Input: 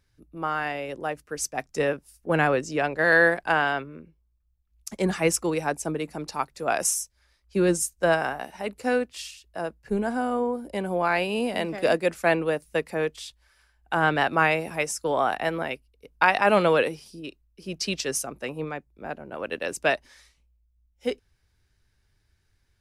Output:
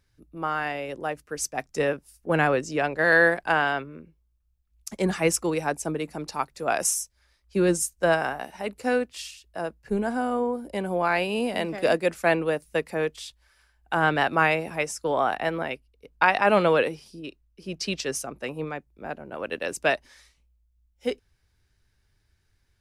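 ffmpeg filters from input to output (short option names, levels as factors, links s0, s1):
-filter_complex "[0:a]asettb=1/sr,asplit=3[s0][s1][s2];[s0]atrim=end=14.554[s3];[s1]atrim=start=14.55:end=18.43,asetpts=PTS-STARTPTS,afade=t=in:d=0.004:c=qsin,afade=t=out:st=3.876:d=0.004:c=qsin,highshelf=f=6600:g=-6[s4];[s2]atrim=start=18.426[s5];[s3][s4]acrossfade=d=0.004:c1=hsin:c2=qsin[s6];[s6][s5]acrossfade=d=0.004:c1=qsin:c2=hsin"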